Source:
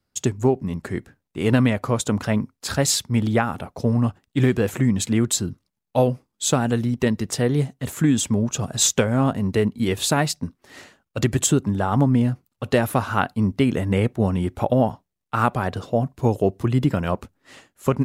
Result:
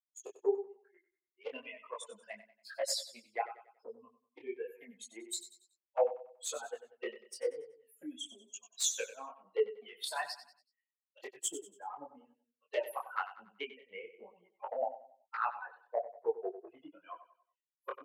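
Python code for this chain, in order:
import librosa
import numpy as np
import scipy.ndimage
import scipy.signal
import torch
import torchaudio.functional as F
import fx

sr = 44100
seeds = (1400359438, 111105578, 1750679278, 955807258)

p1 = fx.bin_expand(x, sr, power=3.0)
p2 = fx.rider(p1, sr, range_db=4, speed_s=0.5)
p3 = p1 + F.gain(torch.from_numpy(p2), 3.0).numpy()
p4 = fx.high_shelf(p3, sr, hz=8700.0, db=-5.0)
p5 = fx.env_flanger(p4, sr, rest_ms=11.4, full_db=-15.0)
p6 = scipy.signal.sosfilt(scipy.signal.cheby1(4, 1.0, 420.0, 'highpass', fs=sr, output='sos'), p5)
p7 = p6 + fx.echo_feedback(p6, sr, ms=94, feedback_pct=36, wet_db=-13, dry=0)
p8 = fx.detune_double(p7, sr, cents=36)
y = F.gain(torch.from_numpy(p8), -7.0).numpy()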